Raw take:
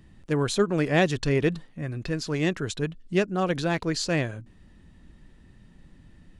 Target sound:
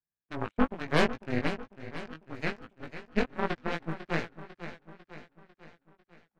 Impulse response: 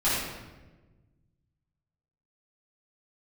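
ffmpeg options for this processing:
-filter_complex "[0:a]highpass=f=280:t=q:w=0.5412,highpass=f=280:t=q:w=1.307,lowpass=f=2700:t=q:w=0.5176,lowpass=f=2700:t=q:w=0.7071,lowpass=f=2700:t=q:w=1.932,afreqshift=-160,aeval=exprs='clip(val(0),-1,0.0355)':c=same,aeval=exprs='0.316*(cos(1*acos(clip(val(0)/0.316,-1,1)))-cos(1*PI/2))+0.0447*(cos(7*acos(clip(val(0)/0.316,-1,1)))-cos(7*PI/2))':c=same,asplit=2[s0][s1];[s1]aecho=0:1:498|996|1494|1992|2490|2988:0.251|0.133|0.0706|0.0374|0.0198|0.0105[s2];[s0][s2]amix=inputs=2:normalize=0,flanger=delay=17.5:depth=2.4:speed=2.6,volume=1.68"

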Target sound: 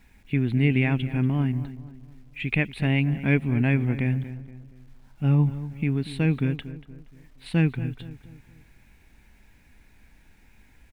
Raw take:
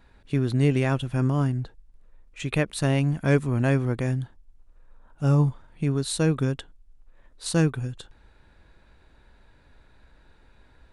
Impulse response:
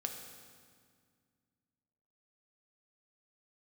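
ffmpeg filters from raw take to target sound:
-filter_complex "[0:a]firequalizer=gain_entry='entry(150,0);entry(210,5);entry(320,-2);entry(550,-9);entry(790,-2);entry(1200,-10);entry(2200,9);entry(6200,-30);entry(9100,-17)':delay=0.05:min_phase=1,acrusher=bits=10:mix=0:aa=0.000001,asplit=2[s0][s1];[s1]adelay=236,lowpass=f=1800:p=1,volume=0.211,asplit=2[s2][s3];[s3]adelay=236,lowpass=f=1800:p=1,volume=0.43,asplit=2[s4][s5];[s5]adelay=236,lowpass=f=1800:p=1,volume=0.43,asplit=2[s6][s7];[s7]adelay=236,lowpass=f=1800:p=1,volume=0.43[s8];[s2][s4][s6][s8]amix=inputs=4:normalize=0[s9];[s0][s9]amix=inputs=2:normalize=0"

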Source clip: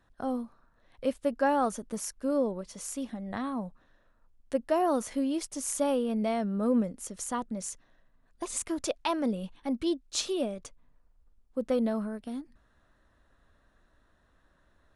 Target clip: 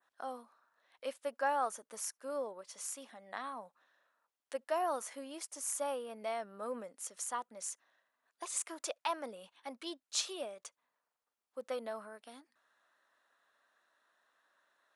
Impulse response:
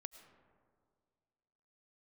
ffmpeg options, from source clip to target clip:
-filter_complex "[0:a]adynamicequalizer=threshold=0.00251:dfrequency=3900:dqfactor=0.78:tfrequency=3900:tqfactor=0.78:attack=5:release=100:ratio=0.375:range=3.5:mode=cutabove:tftype=bell,highpass=770[s0];[1:a]atrim=start_sample=2205,atrim=end_sample=3087[s1];[s0][s1]afir=irnorm=-1:irlink=0,volume=1.5"

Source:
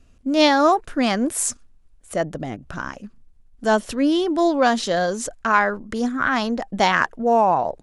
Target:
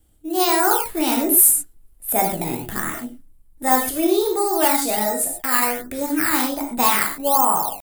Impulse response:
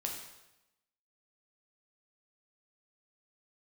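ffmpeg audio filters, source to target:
-filter_complex "[0:a]asetrate=52444,aresample=44100,atempo=0.840896[s0];[1:a]atrim=start_sample=2205,atrim=end_sample=6174[s1];[s0][s1]afir=irnorm=-1:irlink=0,acrossover=split=580|1800[s2][s3][s4];[s3]acrusher=samples=10:mix=1:aa=0.000001:lfo=1:lforange=10:lforate=1.3[s5];[s2][s5][s4]amix=inputs=3:normalize=0,dynaudnorm=f=120:g=7:m=2.82,aexciter=amount=3.8:drive=8.1:freq=8300,asplit=2[s6][s7];[s7]asoftclip=type=tanh:threshold=0.631,volume=0.631[s8];[s6][s8]amix=inputs=2:normalize=0,volume=0.335"

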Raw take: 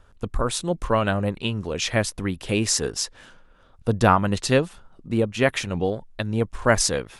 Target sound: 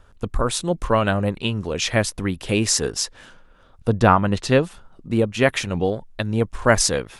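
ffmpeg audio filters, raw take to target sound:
-filter_complex "[0:a]asettb=1/sr,asplit=3[s0][s1][s2];[s0]atrim=end=3.894[s3];[s1]atrim=start=3.89:end=4.61,asetpts=PTS-STARTPTS,afade=t=in:d=0.004:c=qsin,afade=t=out:st=0.716:d=0.004:c=qsin,highshelf=f=5800:g=-10.5[s4];[s2]atrim=start=4.606[s5];[s3][s4]acrossfade=d=0.004:c1=hsin:c2=qsin[s6];[s6][s5]acrossfade=d=0.004:c1=qsin:c2=hsin,volume=1.33"

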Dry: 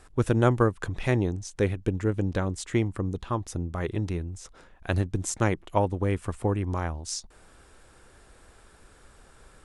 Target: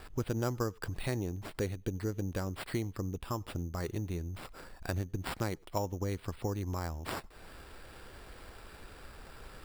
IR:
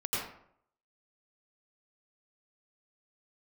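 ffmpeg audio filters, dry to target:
-filter_complex "[0:a]acompressor=threshold=0.00501:ratio=2,asplit=2[s0][s1];[1:a]atrim=start_sample=2205,atrim=end_sample=3969,adelay=12[s2];[s1][s2]afir=irnorm=-1:irlink=0,volume=0.0422[s3];[s0][s3]amix=inputs=2:normalize=0,acrusher=samples=7:mix=1:aa=0.000001,volume=1.58"

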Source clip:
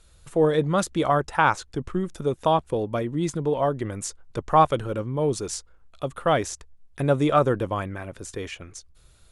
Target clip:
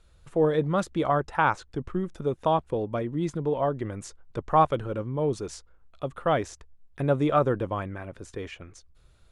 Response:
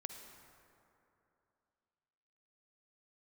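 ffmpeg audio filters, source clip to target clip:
-af "lowpass=f=2700:p=1,volume=0.75"

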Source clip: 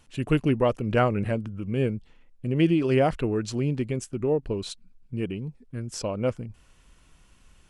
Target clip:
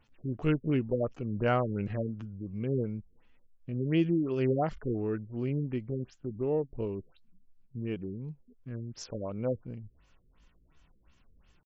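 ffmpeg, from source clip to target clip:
-af "atempo=0.66,afftfilt=real='re*lt(b*sr/1024,480*pow(7800/480,0.5+0.5*sin(2*PI*2.8*pts/sr)))':imag='im*lt(b*sr/1024,480*pow(7800/480,0.5+0.5*sin(2*PI*2.8*pts/sr)))':win_size=1024:overlap=0.75,volume=0.501"

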